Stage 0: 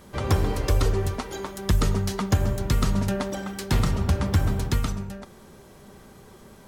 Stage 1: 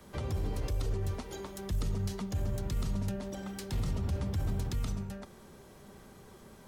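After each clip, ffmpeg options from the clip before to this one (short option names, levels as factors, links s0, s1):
-filter_complex "[0:a]acrossover=split=200|1000|1900[s0][s1][s2][s3];[s2]acompressor=threshold=0.00355:ratio=6[s4];[s0][s1][s4][s3]amix=inputs=4:normalize=0,alimiter=limit=0.106:level=0:latency=1:release=22,acrossover=split=170[s5][s6];[s6]acompressor=threshold=0.02:ratio=6[s7];[s5][s7]amix=inputs=2:normalize=0,volume=0.562"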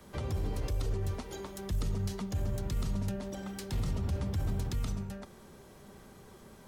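-af anull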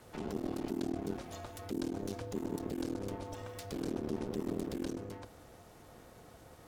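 -af "bandreject=f=50:t=h:w=6,bandreject=f=100:t=h:w=6,bandreject=f=150:t=h:w=6,bandreject=f=200:t=h:w=6,aeval=exprs='clip(val(0),-1,0.0075)':c=same,aeval=exprs='val(0)*sin(2*PI*300*n/s)':c=same,volume=1.12"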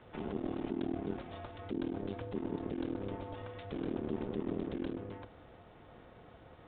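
-af "aresample=8000,aresample=44100"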